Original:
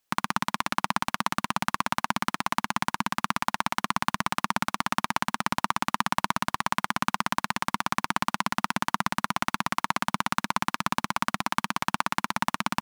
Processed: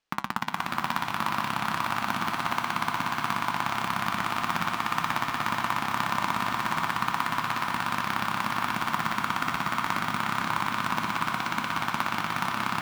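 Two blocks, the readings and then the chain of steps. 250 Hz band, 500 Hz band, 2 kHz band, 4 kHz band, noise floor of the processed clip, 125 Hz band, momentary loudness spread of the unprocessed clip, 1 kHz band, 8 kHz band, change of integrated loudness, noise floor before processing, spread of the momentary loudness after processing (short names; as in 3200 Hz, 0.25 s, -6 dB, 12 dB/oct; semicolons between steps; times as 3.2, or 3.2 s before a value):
-1.5 dB, +0.5 dB, +1.0 dB, -0.5 dB, -35 dBFS, +0.5 dB, 1 LU, +0.5 dB, -4.5 dB, 0.0 dB, -78 dBFS, 1 LU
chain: reverse delay 0.365 s, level -6 dB; LPF 4500 Hz 12 dB/oct; in parallel at -2 dB: limiter -16.5 dBFS, peak gain reduction 11.5 dB; on the sum: short-mantissa float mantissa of 2-bit; flange 0.57 Hz, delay 5.9 ms, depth 6.7 ms, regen -74%; on a send: diffused feedback echo 0.499 s, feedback 68%, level -4 dB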